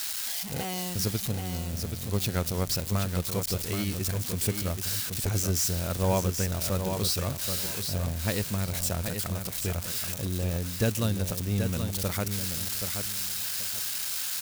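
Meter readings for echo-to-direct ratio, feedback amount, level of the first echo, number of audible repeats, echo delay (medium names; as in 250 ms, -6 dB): -6.5 dB, 23%, -6.5 dB, 3, 778 ms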